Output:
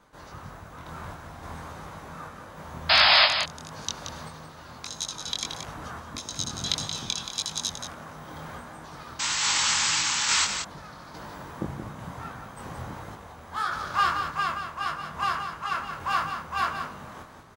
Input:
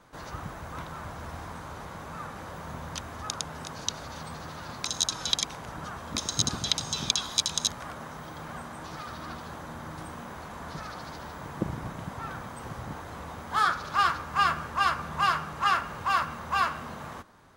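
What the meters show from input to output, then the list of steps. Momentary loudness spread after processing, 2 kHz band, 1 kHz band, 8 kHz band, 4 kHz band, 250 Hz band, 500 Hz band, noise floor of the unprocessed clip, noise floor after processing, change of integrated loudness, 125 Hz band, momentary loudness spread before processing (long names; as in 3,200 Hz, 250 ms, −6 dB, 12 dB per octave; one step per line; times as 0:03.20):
21 LU, +4.5 dB, 0.0 dB, +3.5 dB, +6.0 dB, −2.0 dB, +2.0 dB, −42 dBFS, −46 dBFS, +5.5 dB, −1.5 dB, 15 LU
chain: reversed playback
upward compression, threshold −40 dBFS
reversed playback
sound drawn into the spectrogram noise, 0:09.19–0:10.45, 800–8,100 Hz −22 dBFS
sample-and-hold tremolo
sound drawn into the spectrogram noise, 0:02.89–0:03.26, 570–5,200 Hz −18 dBFS
chorus effect 1.6 Hz, delay 19 ms, depth 5.3 ms
on a send: single-tap delay 177 ms −8 dB
on the sum: level +3.5 dB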